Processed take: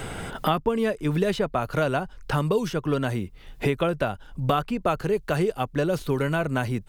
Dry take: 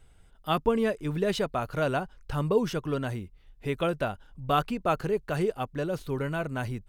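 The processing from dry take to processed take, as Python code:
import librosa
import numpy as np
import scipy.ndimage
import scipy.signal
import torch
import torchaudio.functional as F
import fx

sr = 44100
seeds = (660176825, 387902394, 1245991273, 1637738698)

y = fx.band_squash(x, sr, depth_pct=100)
y = y * 10.0 ** (3.0 / 20.0)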